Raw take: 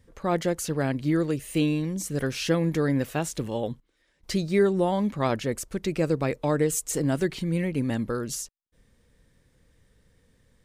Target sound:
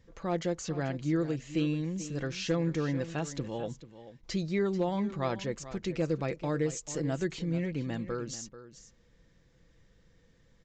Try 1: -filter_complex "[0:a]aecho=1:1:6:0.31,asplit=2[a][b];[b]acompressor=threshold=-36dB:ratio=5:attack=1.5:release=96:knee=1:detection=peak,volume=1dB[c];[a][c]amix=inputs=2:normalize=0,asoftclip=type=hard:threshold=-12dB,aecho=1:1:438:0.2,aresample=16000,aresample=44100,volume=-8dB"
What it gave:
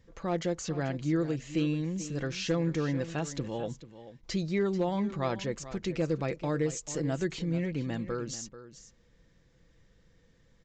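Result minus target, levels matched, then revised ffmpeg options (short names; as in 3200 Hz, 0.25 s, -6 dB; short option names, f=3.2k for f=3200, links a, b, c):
compressor: peak gain reduction -5.5 dB
-filter_complex "[0:a]aecho=1:1:6:0.31,asplit=2[a][b];[b]acompressor=threshold=-43dB:ratio=5:attack=1.5:release=96:knee=1:detection=peak,volume=1dB[c];[a][c]amix=inputs=2:normalize=0,asoftclip=type=hard:threshold=-12dB,aecho=1:1:438:0.2,aresample=16000,aresample=44100,volume=-8dB"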